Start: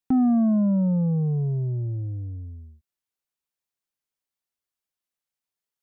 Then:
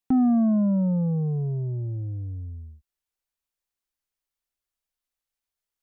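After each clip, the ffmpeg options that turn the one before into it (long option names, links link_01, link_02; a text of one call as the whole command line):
ffmpeg -i in.wav -af "asubboost=boost=6.5:cutoff=58" out.wav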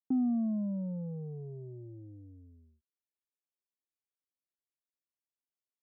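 ffmpeg -i in.wav -af "bandpass=frequency=330:width_type=q:width=1.6:csg=0,volume=-6.5dB" out.wav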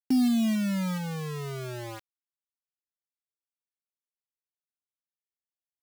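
ffmpeg -i in.wav -af "acrusher=bits=6:mix=0:aa=0.000001,volume=6dB" out.wav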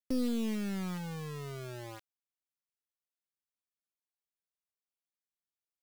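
ffmpeg -i in.wav -af "aeval=exprs='clip(val(0),-1,0.0237)':channel_layout=same,volume=-5.5dB" out.wav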